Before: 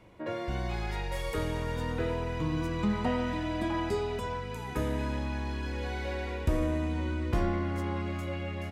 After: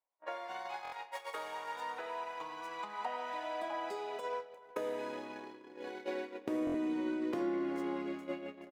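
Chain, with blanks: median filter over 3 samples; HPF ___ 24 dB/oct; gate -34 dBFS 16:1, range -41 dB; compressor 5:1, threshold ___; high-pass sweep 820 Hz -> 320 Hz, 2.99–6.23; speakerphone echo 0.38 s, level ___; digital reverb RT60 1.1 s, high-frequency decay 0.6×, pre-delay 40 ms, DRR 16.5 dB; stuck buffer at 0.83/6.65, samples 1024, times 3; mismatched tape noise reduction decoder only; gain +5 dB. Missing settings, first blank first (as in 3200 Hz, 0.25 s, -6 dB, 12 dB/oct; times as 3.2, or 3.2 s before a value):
99 Hz, -43 dBFS, -17 dB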